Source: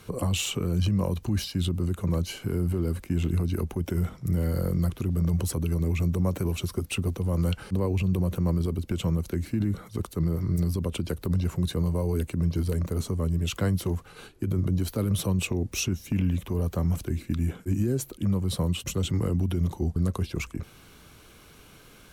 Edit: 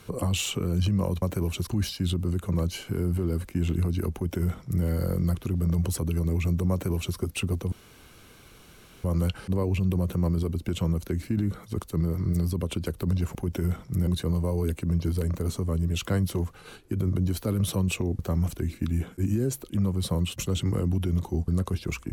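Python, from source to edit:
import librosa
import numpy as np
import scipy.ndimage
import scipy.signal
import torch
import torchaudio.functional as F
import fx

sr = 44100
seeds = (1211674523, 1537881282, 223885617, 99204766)

y = fx.edit(x, sr, fx.duplicate(start_s=3.68, length_s=0.72, to_s=11.58),
    fx.duplicate(start_s=6.26, length_s=0.45, to_s=1.22),
    fx.insert_room_tone(at_s=7.27, length_s=1.32),
    fx.cut(start_s=15.7, length_s=0.97), tone=tone)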